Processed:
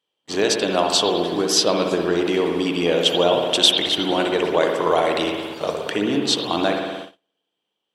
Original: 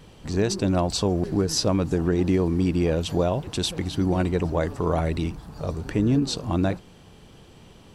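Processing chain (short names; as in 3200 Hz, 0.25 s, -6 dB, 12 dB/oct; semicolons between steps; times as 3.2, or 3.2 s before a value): in parallel at +1.5 dB: vocal rider within 4 dB 0.5 s; on the sum: HPF 430 Hz 12 dB/oct; spring tank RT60 1.6 s, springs 58 ms, chirp 55 ms, DRR 2 dB; gate -32 dBFS, range -38 dB; bell 3200 Hz +11.5 dB 0.39 oct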